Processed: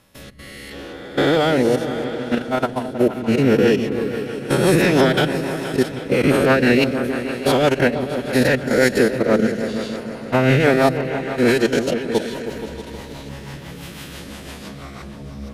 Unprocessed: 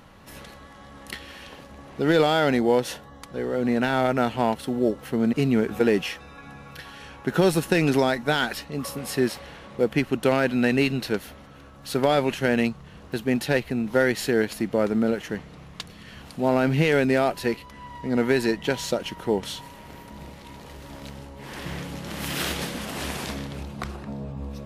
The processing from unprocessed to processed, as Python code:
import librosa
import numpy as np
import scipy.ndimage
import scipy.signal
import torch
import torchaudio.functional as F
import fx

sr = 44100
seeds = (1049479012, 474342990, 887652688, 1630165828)

p1 = fx.spec_swells(x, sr, rise_s=2.38)
p2 = fx.level_steps(p1, sr, step_db=20)
p3 = fx.stretch_vocoder(p2, sr, factor=0.63)
p4 = fx.rotary_switch(p3, sr, hz=0.75, then_hz=6.0, switch_at_s=2.04)
p5 = p4 + fx.echo_opening(p4, sr, ms=158, hz=200, octaves=2, feedback_pct=70, wet_db=-6, dry=0)
y = p5 * librosa.db_to_amplitude(7.5)